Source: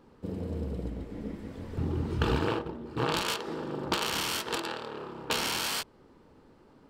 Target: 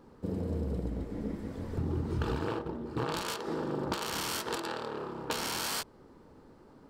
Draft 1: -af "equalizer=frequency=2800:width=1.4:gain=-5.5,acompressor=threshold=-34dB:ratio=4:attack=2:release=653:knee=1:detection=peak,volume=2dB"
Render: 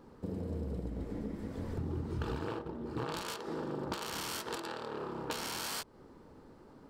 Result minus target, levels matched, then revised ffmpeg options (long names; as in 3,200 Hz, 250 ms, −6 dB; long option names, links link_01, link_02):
downward compressor: peak gain reduction +4.5 dB
-af "equalizer=frequency=2800:width=1.4:gain=-5.5,acompressor=threshold=-28dB:ratio=4:attack=2:release=653:knee=1:detection=peak,volume=2dB"